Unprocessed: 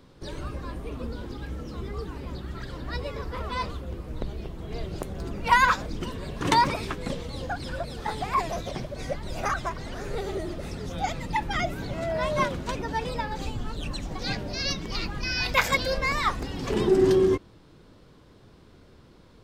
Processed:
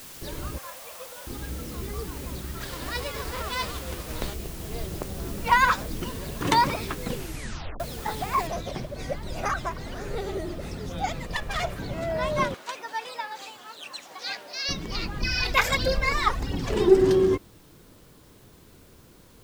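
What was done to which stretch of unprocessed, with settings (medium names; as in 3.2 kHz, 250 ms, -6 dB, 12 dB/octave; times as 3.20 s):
0.58–1.27 s: brick-wall FIR band-pass 480–3600 Hz
2.60–4.33 s: formants flattened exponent 0.6
4.92–5.61 s: treble shelf 4.4 kHz -4 dB
7.05 s: tape stop 0.75 s
8.47 s: noise floor step -44 dB -60 dB
11.24–11.79 s: comb filter that takes the minimum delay 1.7 ms
12.54–14.69 s: high-pass 780 Hz
15.21–17.02 s: phaser 1.5 Hz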